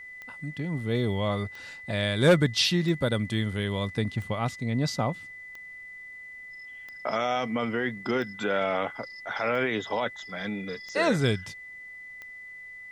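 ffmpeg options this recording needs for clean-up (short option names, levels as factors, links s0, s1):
-af "adeclick=t=4,bandreject=f=2000:w=30,agate=range=0.0891:threshold=0.0158"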